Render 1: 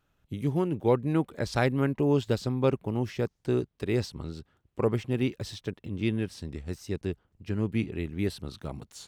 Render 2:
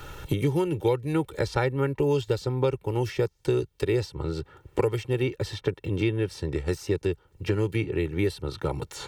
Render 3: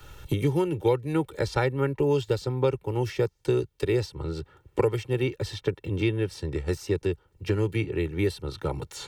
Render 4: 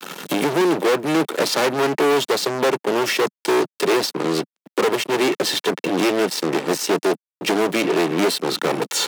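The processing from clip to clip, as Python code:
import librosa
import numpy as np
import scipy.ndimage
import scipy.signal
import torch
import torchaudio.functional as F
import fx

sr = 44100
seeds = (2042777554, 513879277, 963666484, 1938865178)

y1 = x + 0.8 * np.pad(x, (int(2.2 * sr / 1000.0), 0))[:len(x)]
y1 = fx.band_squash(y1, sr, depth_pct=100)
y2 = fx.band_widen(y1, sr, depth_pct=40)
y3 = fx.fuzz(y2, sr, gain_db=37.0, gate_db=-46.0)
y3 = scipy.signal.sosfilt(scipy.signal.butter(6, 190.0, 'highpass', fs=sr, output='sos'), y3)
y3 = F.gain(torch.from_numpy(y3), -1.5).numpy()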